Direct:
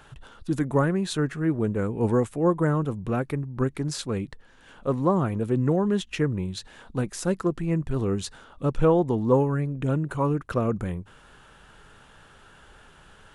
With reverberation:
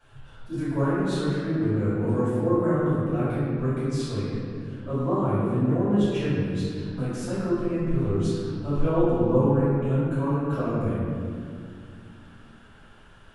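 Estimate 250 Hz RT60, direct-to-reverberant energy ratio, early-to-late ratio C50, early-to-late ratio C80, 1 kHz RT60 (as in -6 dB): 3.5 s, -14.5 dB, -4.5 dB, -2.0 dB, 2.0 s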